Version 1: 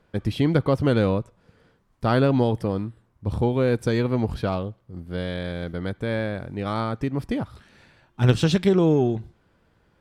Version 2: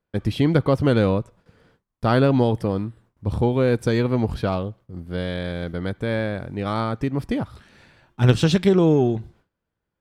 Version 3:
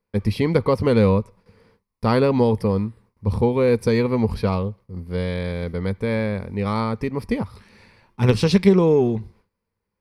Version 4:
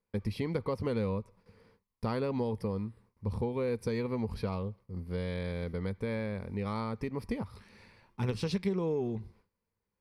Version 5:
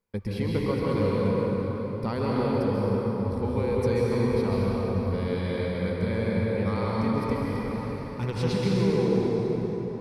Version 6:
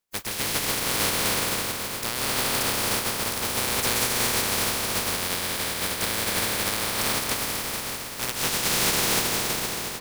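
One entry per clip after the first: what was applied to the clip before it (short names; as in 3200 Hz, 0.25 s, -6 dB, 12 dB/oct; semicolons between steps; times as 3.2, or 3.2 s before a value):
gate with hold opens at -50 dBFS; gain +2 dB
ripple EQ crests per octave 0.88, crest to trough 9 dB
compressor 2.5:1, threshold -26 dBFS, peak gain reduction 11.5 dB; gain -6.5 dB
plate-style reverb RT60 4.8 s, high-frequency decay 0.6×, pre-delay 0.12 s, DRR -5 dB; gain +2 dB
spectral contrast lowered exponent 0.17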